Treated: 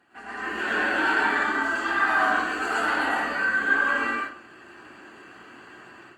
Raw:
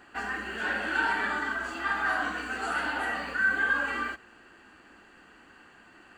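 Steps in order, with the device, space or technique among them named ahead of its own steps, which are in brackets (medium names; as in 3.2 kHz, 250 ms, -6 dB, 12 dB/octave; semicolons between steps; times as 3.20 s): far-field microphone of a smart speaker (reverberation RT60 0.50 s, pre-delay 98 ms, DRR -5.5 dB; high-pass 83 Hz 24 dB/octave; level rider gain up to 10.5 dB; trim -8.5 dB; Opus 32 kbps 48 kHz)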